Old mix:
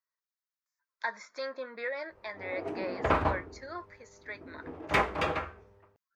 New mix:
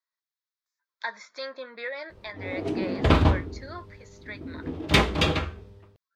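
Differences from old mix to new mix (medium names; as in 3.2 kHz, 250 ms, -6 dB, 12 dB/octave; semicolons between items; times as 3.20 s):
background: remove three-band isolator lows -14 dB, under 490 Hz, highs -12 dB, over 2.6 kHz; master: add peaking EQ 3.5 kHz +8.5 dB 0.86 oct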